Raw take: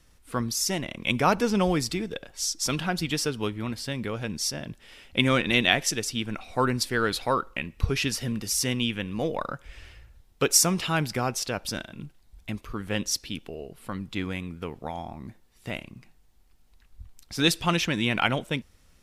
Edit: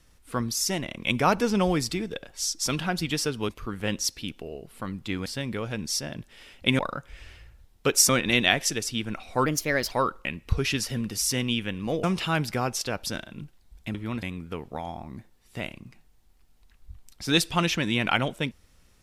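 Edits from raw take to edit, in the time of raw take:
3.49–3.77 s: swap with 12.56–14.33 s
6.67–7.23 s: speed 123%
9.35–10.65 s: move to 5.30 s

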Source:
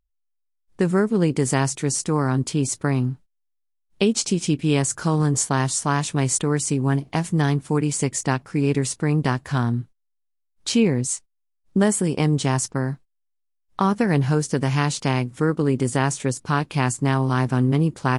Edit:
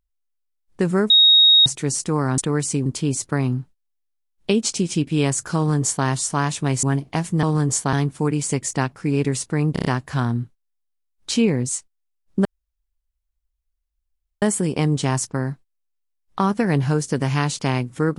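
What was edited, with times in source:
1.10–1.66 s: bleep 3.76 kHz -9 dBFS
5.08–5.58 s: copy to 7.43 s
6.35–6.83 s: move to 2.38 s
9.23 s: stutter 0.03 s, 5 plays
11.83 s: insert room tone 1.97 s

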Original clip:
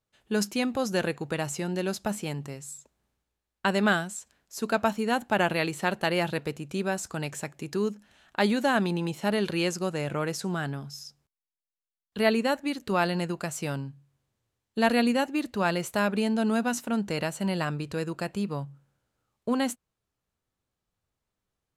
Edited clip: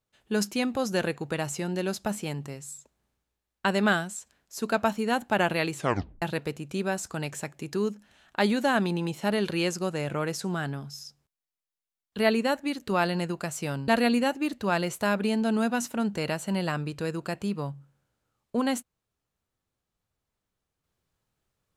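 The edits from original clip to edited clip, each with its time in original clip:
5.75 s: tape stop 0.47 s
13.88–14.81 s: delete

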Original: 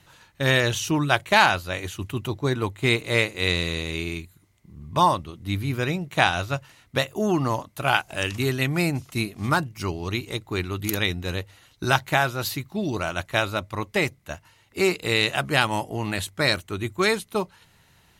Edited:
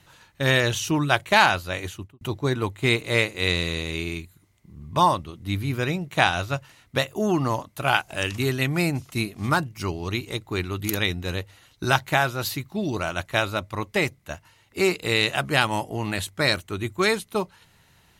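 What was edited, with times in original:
1.85–2.21 s: studio fade out

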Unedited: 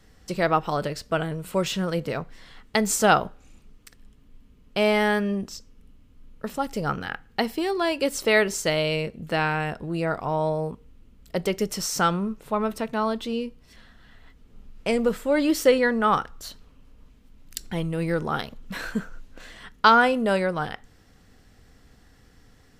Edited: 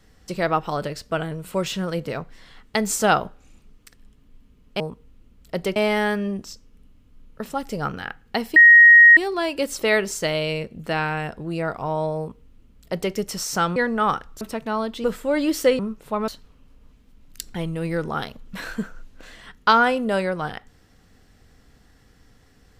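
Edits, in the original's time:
7.60 s: add tone 1.88 kHz -6 dBFS 0.61 s
10.61–11.57 s: copy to 4.80 s
12.19–12.68 s: swap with 15.80–16.45 s
13.31–15.05 s: delete

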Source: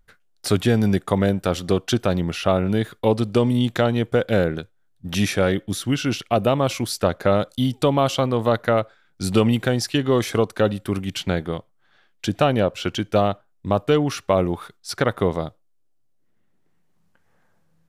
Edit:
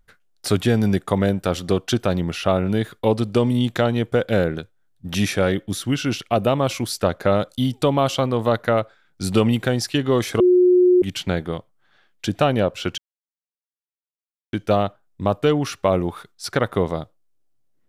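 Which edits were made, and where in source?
10.40–11.02 s: bleep 361 Hz -10.5 dBFS
12.98 s: insert silence 1.55 s

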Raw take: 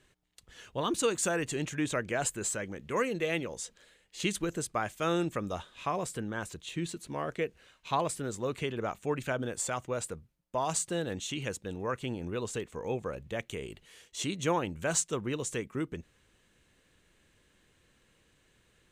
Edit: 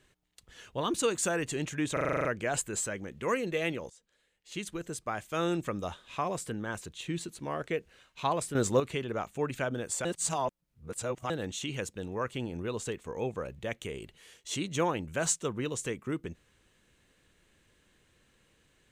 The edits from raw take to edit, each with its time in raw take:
1.93 s: stutter 0.04 s, 9 plays
3.58–5.30 s: fade in, from -20.5 dB
8.23–8.48 s: gain +8.5 dB
9.73–10.98 s: reverse

